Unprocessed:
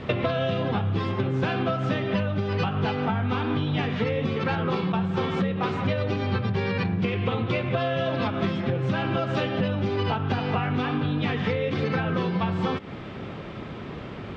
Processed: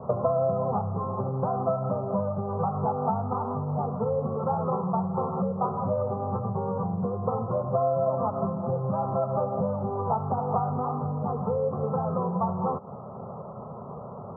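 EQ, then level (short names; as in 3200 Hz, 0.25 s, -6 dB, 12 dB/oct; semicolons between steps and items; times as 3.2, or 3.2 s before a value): HPF 160 Hz 12 dB/oct; steep low-pass 1300 Hz 72 dB/oct; fixed phaser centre 750 Hz, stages 4; +4.0 dB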